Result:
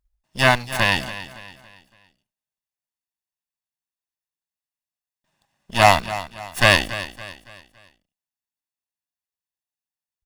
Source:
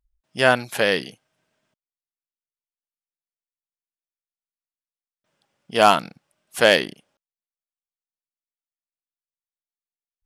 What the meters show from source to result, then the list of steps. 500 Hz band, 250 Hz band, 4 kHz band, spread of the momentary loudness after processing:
-3.0 dB, -0.5 dB, +2.0 dB, 22 LU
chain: minimum comb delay 1.1 ms; short-mantissa float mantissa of 4-bit; feedback echo 0.281 s, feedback 40%, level -14.5 dB; gain +2 dB

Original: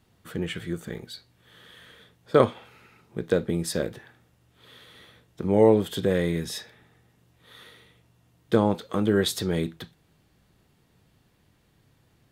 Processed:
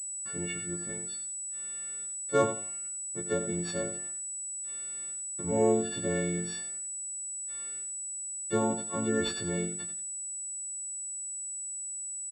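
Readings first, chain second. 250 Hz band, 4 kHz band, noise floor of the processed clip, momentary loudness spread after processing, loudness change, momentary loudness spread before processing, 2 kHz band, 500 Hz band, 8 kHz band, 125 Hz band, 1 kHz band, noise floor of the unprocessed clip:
-6.5 dB, -7.0 dB, -38 dBFS, 7 LU, -7.0 dB, 18 LU, -4.0 dB, -7.0 dB, +13.0 dB, -8.0 dB, -4.5 dB, -65 dBFS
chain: frequency quantiser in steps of 4 st; high shelf 2900 Hz -4.5 dB; gate -48 dBFS, range -35 dB; on a send: feedback echo 86 ms, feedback 23%, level -10 dB; on the sum: pulse-width modulation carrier 7900 Hz; gain -8 dB

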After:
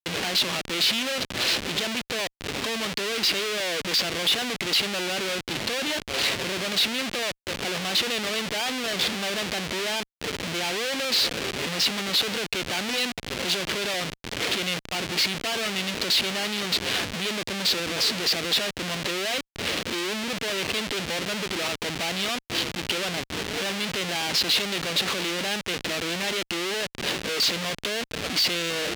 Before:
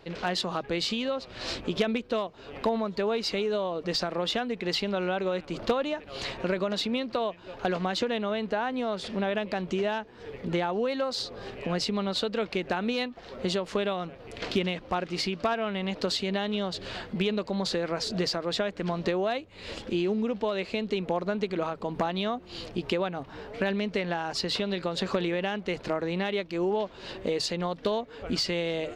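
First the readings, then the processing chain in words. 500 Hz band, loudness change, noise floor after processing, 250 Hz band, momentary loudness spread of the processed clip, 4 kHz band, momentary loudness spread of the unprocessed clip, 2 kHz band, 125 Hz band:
-3.0 dB, +5.0 dB, -62 dBFS, -2.5 dB, 6 LU, +10.0 dB, 5 LU, +8.5 dB, -1.5 dB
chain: Schmitt trigger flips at -39 dBFS; weighting filter D

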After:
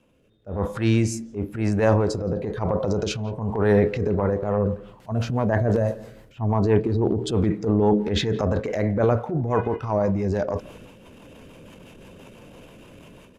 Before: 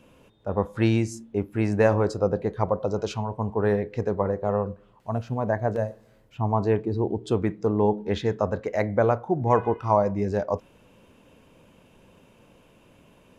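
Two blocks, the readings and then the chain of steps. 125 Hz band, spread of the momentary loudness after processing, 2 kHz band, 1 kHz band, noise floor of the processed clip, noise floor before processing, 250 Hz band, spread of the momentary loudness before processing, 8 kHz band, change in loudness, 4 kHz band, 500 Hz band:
+4.0 dB, 9 LU, +1.5 dB, -2.0 dB, -52 dBFS, -57 dBFS, +3.5 dB, 8 LU, n/a, +2.0 dB, +8.0 dB, +1.0 dB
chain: rotary speaker horn 1 Hz, later 6 Hz, at 3.82; AGC gain up to 16 dB; transient shaper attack -9 dB, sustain +8 dB; speakerphone echo 0.17 s, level -20 dB; gain -4.5 dB

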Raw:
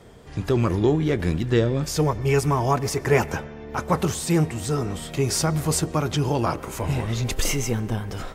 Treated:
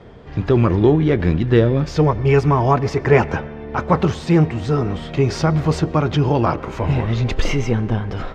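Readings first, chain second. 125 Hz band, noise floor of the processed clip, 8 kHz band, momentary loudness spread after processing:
+6.5 dB, -33 dBFS, -11.0 dB, 8 LU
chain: air absorption 220 m; gain +6.5 dB

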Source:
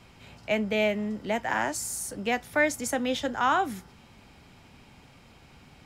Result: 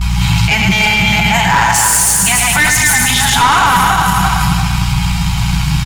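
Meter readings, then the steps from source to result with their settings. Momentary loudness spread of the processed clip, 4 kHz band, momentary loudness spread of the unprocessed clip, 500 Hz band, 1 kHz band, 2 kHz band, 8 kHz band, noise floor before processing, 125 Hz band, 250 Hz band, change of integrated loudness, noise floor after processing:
7 LU, +24.0 dB, 7 LU, +2.5 dB, +18.5 dB, +19.0 dB, +25.0 dB, -55 dBFS, +31.0 dB, +14.0 dB, +17.5 dB, -15 dBFS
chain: regenerating reverse delay 0.171 s, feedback 51%, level -2.5 dB; comb 7.2 ms, depth 89%; on a send: echo 0.108 s -6.5 dB; on the sum: gate with hold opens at -44 dBFS; bell 1700 Hz -7.5 dB 2.2 oct; in parallel at +2.5 dB: compressor, threshold -37 dBFS, peak gain reduction 16 dB; on the sum: hum 60 Hz, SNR 13 dB; elliptic band-stop 180–870 Hz, stop band 40 dB; tube stage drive 24 dB, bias 0.55; Schroeder reverb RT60 2 s, combs from 33 ms, DRR 10 dB; maximiser +30.5 dB; gain -1 dB

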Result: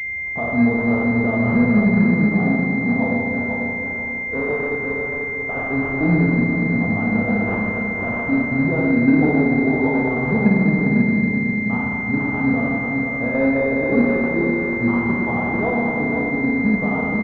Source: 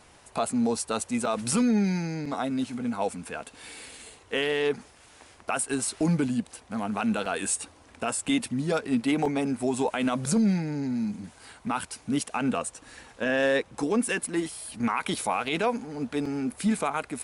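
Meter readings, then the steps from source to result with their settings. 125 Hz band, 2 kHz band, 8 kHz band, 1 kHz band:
+12.0 dB, +14.0 dB, under -30 dB, +4.0 dB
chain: bell 75 Hz +12.5 dB 2.1 oct; sample-and-hold 4×; on a send: feedback echo 0.492 s, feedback 32%, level -5 dB; on the sum: Schroeder reverb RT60 2.3 s, combs from 26 ms, DRR -4 dB; pulse-width modulation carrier 2100 Hz

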